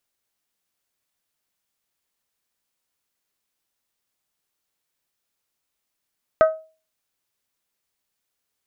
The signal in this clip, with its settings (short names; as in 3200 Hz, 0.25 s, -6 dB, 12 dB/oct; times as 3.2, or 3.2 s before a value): glass hit bell, lowest mode 636 Hz, modes 4, decay 0.35 s, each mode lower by 7.5 dB, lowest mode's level -8 dB